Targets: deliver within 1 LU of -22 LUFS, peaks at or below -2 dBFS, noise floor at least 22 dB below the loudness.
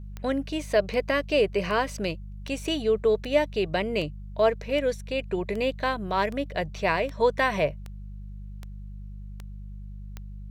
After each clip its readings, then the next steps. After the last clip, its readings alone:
clicks found 14; hum 50 Hz; highest harmonic 200 Hz; hum level -36 dBFS; loudness -26.5 LUFS; peak level -9.5 dBFS; loudness target -22.0 LUFS
-> de-click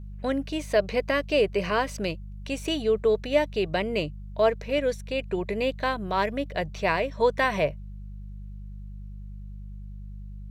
clicks found 0; hum 50 Hz; highest harmonic 200 Hz; hum level -36 dBFS
-> de-hum 50 Hz, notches 4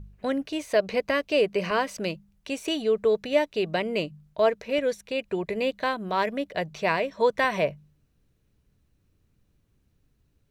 hum not found; loudness -26.5 LUFS; peak level -10.0 dBFS; loudness target -22.0 LUFS
-> trim +4.5 dB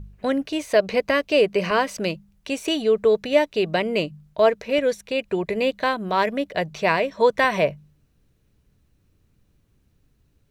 loudness -22.0 LUFS; peak level -5.5 dBFS; noise floor -65 dBFS

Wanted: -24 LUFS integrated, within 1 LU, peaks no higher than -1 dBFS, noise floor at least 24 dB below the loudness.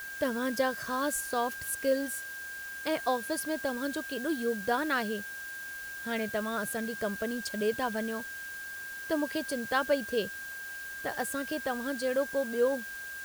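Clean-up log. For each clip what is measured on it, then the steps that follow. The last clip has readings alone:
steady tone 1.6 kHz; tone level -39 dBFS; noise floor -41 dBFS; noise floor target -57 dBFS; loudness -32.5 LUFS; peak level -15.5 dBFS; loudness target -24.0 LUFS
-> band-stop 1.6 kHz, Q 30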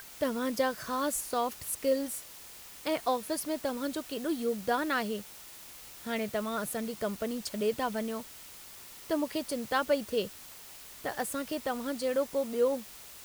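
steady tone not found; noise floor -49 dBFS; noise floor target -57 dBFS
-> noise reduction 8 dB, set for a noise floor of -49 dBFS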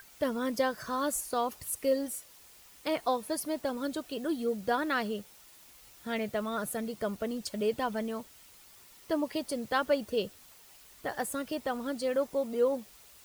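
noise floor -56 dBFS; noise floor target -57 dBFS
-> noise reduction 6 dB, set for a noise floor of -56 dBFS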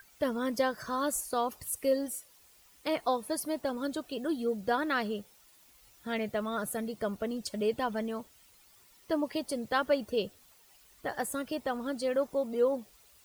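noise floor -61 dBFS; loudness -33.0 LUFS; peak level -16.0 dBFS; loudness target -24.0 LUFS
-> trim +9 dB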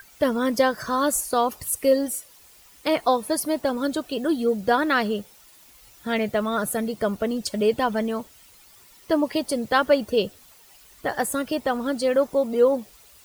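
loudness -24.0 LUFS; peak level -7.0 dBFS; noise floor -52 dBFS

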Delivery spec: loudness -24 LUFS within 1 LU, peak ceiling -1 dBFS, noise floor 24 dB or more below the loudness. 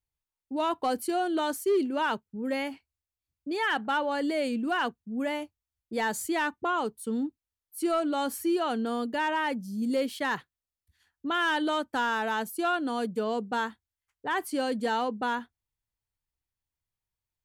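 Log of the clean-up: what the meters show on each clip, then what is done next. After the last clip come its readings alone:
clipped samples 0.4%; clipping level -20.0 dBFS; loudness -29.5 LUFS; peak level -20.0 dBFS; loudness target -24.0 LUFS
-> clip repair -20 dBFS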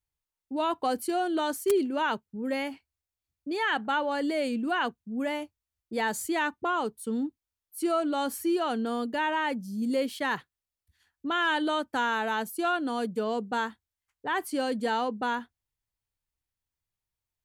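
clipped samples 0.0%; loudness -29.5 LUFS; peak level -11.0 dBFS; loudness target -24.0 LUFS
-> trim +5.5 dB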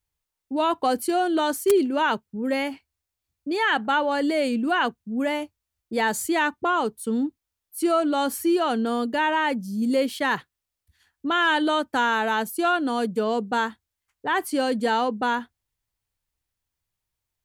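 loudness -24.0 LUFS; peak level -5.5 dBFS; noise floor -85 dBFS

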